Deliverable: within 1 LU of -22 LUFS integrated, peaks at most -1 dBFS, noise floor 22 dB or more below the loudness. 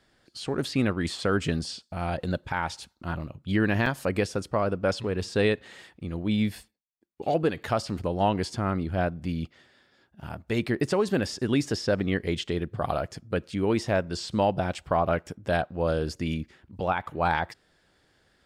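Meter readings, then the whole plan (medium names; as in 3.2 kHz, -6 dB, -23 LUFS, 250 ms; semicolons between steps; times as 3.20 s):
dropouts 1; longest dropout 2.9 ms; loudness -28.5 LUFS; peak level -12.0 dBFS; loudness target -22.0 LUFS
-> interpolate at 3.86 s, 2.9 ms; trim +6.5 dB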